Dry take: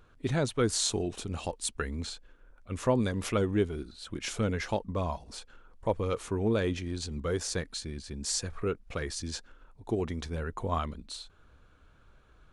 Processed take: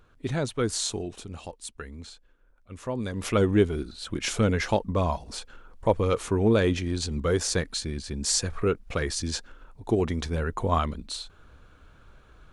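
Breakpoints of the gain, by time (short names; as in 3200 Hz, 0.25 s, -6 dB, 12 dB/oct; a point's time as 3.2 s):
0.74 s +0.5 dB
1.65 s -6 dB
2.89 s -6 dB
3.43 s +6.5 dB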